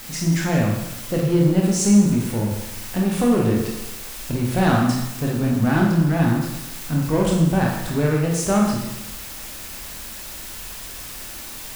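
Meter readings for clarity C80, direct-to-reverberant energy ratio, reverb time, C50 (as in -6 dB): 5.0 dB, -2.0 dB, 1.0 s, 1.5 dB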